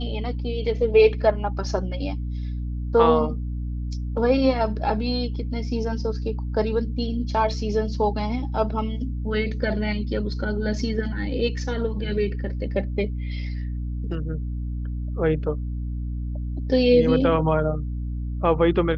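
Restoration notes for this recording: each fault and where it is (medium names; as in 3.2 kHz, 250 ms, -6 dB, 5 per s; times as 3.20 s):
hum 60 Hz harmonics 5 -28 dBFS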